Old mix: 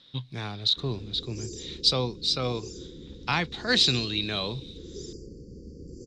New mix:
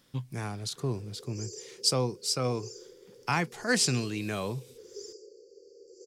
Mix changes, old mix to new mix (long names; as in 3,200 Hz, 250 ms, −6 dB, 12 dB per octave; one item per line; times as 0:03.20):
speech: remove low-pass with resonance 3,800 Hz, resonance Q 13
background: add elliptic high-pass filter 400 Hz, stop band 40 dB